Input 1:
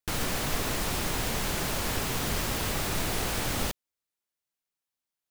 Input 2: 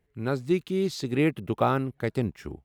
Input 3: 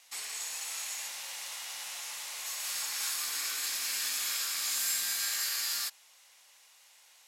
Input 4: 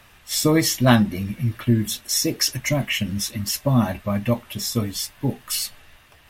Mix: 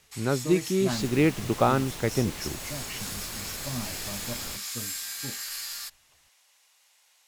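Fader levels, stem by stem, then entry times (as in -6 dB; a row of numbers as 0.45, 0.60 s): -11.0, +1.5, -3.5, -17.0 dB; 0.85, 0.00, 0.00, 0.00 s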